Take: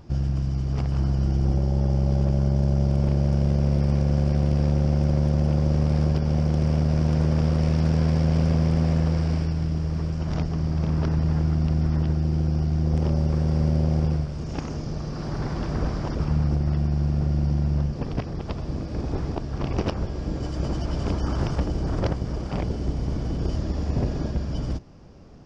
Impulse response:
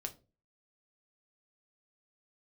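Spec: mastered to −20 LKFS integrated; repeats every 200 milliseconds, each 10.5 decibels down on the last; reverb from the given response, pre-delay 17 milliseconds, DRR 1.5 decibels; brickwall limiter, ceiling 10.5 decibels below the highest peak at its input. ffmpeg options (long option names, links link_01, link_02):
-filter_complex "[0:a]alimiter=limit=-21.5dB:level=0:latency=1,aecho=1:1:200|400|600:0.299|0.0896|0.0269,asplit=2[link_01][link_02];[1:a]atrim=start_sample=2205,adelay=17[link_03];[link_02][link_03]afir=irnorm=-1:irlink=0,volume=0.5dB[link_04];[link_01][link_04]amix=inputs=2:normalize=0,volume=8.5dB"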